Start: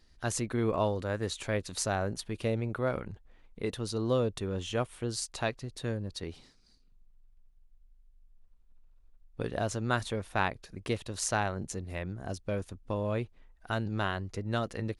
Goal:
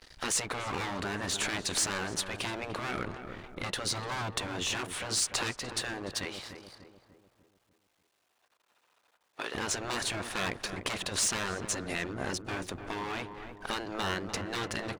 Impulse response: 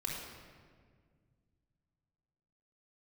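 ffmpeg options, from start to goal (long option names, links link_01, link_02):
-filter_complex "[0:a]acontrast=42,asoftclip=type=hard:threshold=-24.5dB,acompressor=threshold=-36dB:ratio=4,aeval=exprs='sgn(val(0))*max(abs(val(0))-0.00126,0)':channel_layout=same,asettb=1/sr,asplit=3[link_01][link_02][link_03];[link_01]atrim=end=6.254[link_04];[link_02]atrim=start=6.25:end=9.55,asetpts=PTS-STARTPTS,afade=type=in:duration=0.004:curve=qsin,afade=type=out:start_time=3.296:duration=0.004:curve=qsin,highpass=580[link_05];[link_03]atrim=start=9.546[link_06];[link_04][link_05]acrossfade=duration=0.004:curve1=hsin:curve2=qsin[link_07];[link_07][link_06]acrossfade=duration=0.004:curve1=qsin:curve2=hsin,asplit=2[link_08][link_09];[link_09]highpass=frequency=720:poles=1,volume=15dB,asoftclip=type=tanh:threshold=-22.5dB[link_10];[link_08][link_10]amix=inputs=2:normalize=0,lowpass=frequency=5100:poles=1,volume=-6dB,afftfilt=real='re*lt(hypot(re,im),0.0631)':imag='im*lt(hypot(re,im),0.0631)':win_size=1024:overlap=0.75,asplit=2[link_11][link_12];[link_12]adelay=296,lowpass=frequency=1300:poles=1,volume=-7.5dB,asplit=2[link_13][link_14];[link_14]adelay=296,lowpass=frequency=1300:poles=1,volume=0.51,asplit=2[link_15][link_16];[link_16]adelay=296,lowpass=frequency=1300:poles=1,volume=0.51,asplit=2[link_17][link_18];[link_18]adelay=296,lowpass=frequency=1300:poles=1,volume=0.51,asplit=2[link_19][link_20];[link_20]adelay=296,lowpass=frequency=1300:poles=1,volume=0.51,asplit=2[link_21][link_22];[link_22]adelay=296,lowpass=frequency=1300:poles=1,volume=0.51[link_23];[link_11][link_13][link_15][link_17][link_19][link_21][link_23]amix=inputs=7:normalize=0,adynamicequalizer=threshold=0.00251:dfrequency=7900:dqfactor=2.4:tfrequency=7900:tqfactor=2.4:attack=5:release=100:ratio=0.375:range=1.5:mode=boostabove:tftype=bell,volume=6dB"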